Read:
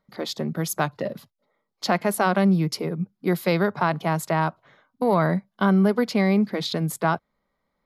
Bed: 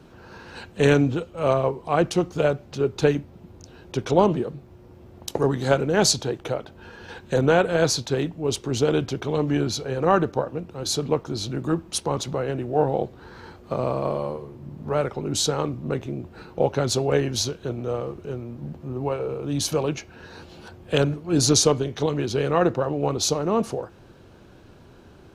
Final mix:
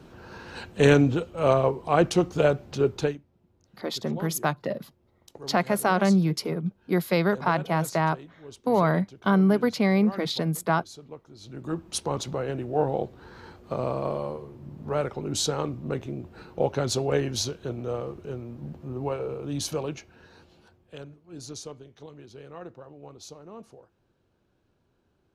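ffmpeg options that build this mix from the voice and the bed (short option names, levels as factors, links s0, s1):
-filter_complex "[0:a]adelay=3650,volume=0.841[s0];[1:a]volume=6.68,afade=t=out:st=2.88:d=0.3:silence=0.1,afade=t=in:st=11.38:d=0.57:silence=0.149624,afade=t=out:st=19.22:d=1.71:silence=0.125893[s1];[s0][s1]amix=inputs=2:normalize=0"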